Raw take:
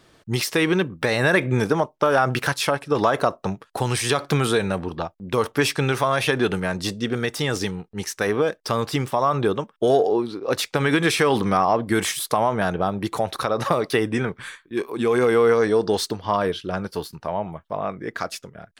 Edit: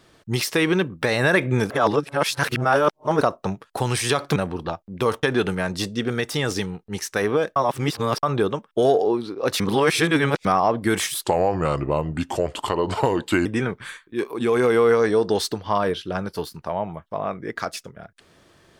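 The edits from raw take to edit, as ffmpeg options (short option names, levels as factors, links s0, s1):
-filter_complex "[0:a]asplit=11[s0][s1][s2][s3][s4][s5][s6][s7][s8][s9][s10];[s0]atrim=end=1.702[s11];[s1]atrim=start=1.698:end=3.212,asetpts=PTS-STARTPTS,areverse[s12];[s2]atrim=start=3.208:end=4.362[s13];[s3]atrim=start=4.678:end=5.552[s14];[s4]atrim=start=6.278:end=8.612[s15];[s5]atrim=start=8.608:end=9.282,asetpts=PTS-STARTPTS,areverse[s16];[s6]atrim=start=9.278:end=10.652[s17];[s7]atrim=start=10.648:end=11.502,asetpts=PTS-STARTPTS,areverse[s18];[s8]atrim=start=11.498:end=12.294[s19];[s9]atrim=start=12.29:end=14.04,asetpts=PTS-STARTPTS,asetrate=34839,aresample=44100[s20];[s10]atrim=start=14.036[s21];[s11][s12]acrossfade=d=0.004:c1=hsin:c2=hsin[s22];[s22][s13]acrossfade=d=0.004:c1=hsin:c2=hsin[s23];[s23][s14]acrossfade=d=0.004:c1=hsin:c2=hsin[s24];[s24][s15]acrossfade=d=0.004:c1=hsin:c2=hsin[s25];[s25][s16]acrossfade=d=0.004:c1=hsin:c2=hsin[s26];[s26][s17]acrossfade=d=0.004:c1=hsin:c2=hsin[s27];[s27][s18]acrossfade=d=0.004:c1=hsin:c2=hsin[s28];[s28][s19]acrossfade=d=0.004:c1=hsin:c2=hsin[s29];[s29][s20]acrossfade=d=0.004:c1=hsin:c2=hsin[s30];[s30][s21]acrossfade=d=0.004:c1=hsin:c2=hsin"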